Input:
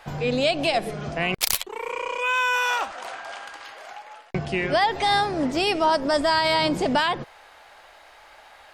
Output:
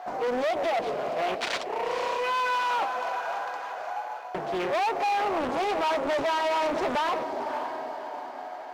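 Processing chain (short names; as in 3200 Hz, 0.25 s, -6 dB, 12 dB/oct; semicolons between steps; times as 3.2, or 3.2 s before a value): EQ curve 150 Hz 0 dB, 760 Hz +12 dB, 3900 Hz -6 dB, 9200 Hz +11 dB; whine 730 Hz -35 dBFS; flange 0.38 Hz, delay 2.8 ms, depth 5.9 ms, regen -49%; on a send: diffused feedback echo 0.556 s, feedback 45%, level -13 dB; on the sum: sample-rate reducer 13000 Hz, jitter 0%; soft clip -23.5 dBFS, distortion -5 dB; three-band isolator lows -17 dB, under 220 Hz, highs -21 dB, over 6000 Hz; Doppler distortion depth 0.52 ms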